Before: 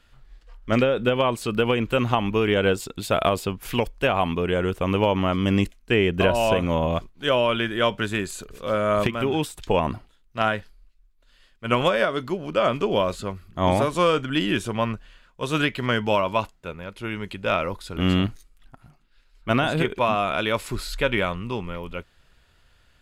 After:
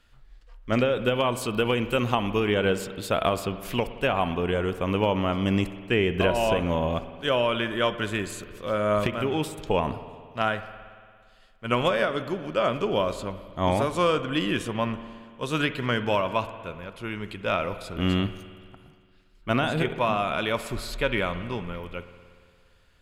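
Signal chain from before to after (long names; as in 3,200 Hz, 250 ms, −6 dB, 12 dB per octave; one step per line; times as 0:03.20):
0:00.85–0:02.40: high-shelf EQ 5,000 Hz +6.5 dB
convolution reverb RT60 2.0 s, pre-delay 57 ms, DRR 12 dB
level −3 dB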